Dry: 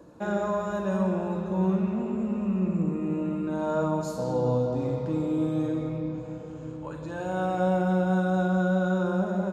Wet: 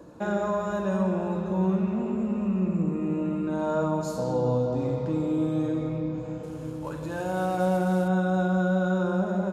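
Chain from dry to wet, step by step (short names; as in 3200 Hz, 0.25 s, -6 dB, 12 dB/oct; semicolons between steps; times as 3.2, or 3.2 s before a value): 6.43–8.08 CVSD 64 kbps; in parallel at -3 dB: compressor, threshold -32 dBFS, peak gain reduction 11.5 dB; on the sum: gain -1.5 dB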